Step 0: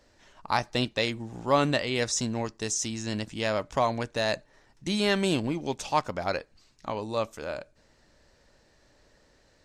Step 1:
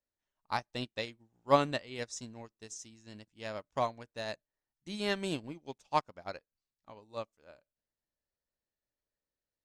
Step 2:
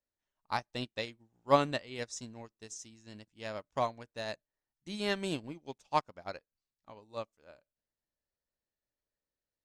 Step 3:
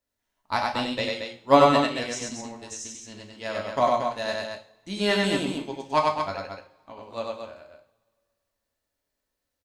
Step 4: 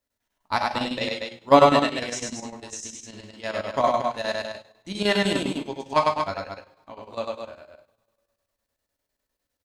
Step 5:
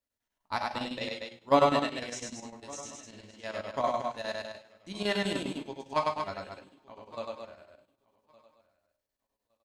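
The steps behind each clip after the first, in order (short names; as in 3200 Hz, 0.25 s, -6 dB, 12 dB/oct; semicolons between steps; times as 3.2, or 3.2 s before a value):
upward expander 2.5:1, over -41 dBFS
nothing audible
loudspeakers at several distances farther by 33 m -2 dB, 78 m -6 dB; two-slope reverb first 0.38 s, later 2 s, from -26 dB, DRR 2 dB; gain +6 dB
chopper 9.9 Hz, depth 60%, duty 75%; gain +2 dB
feedback echo 1.163 s, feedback 17%, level -23 dB; gain -8 dB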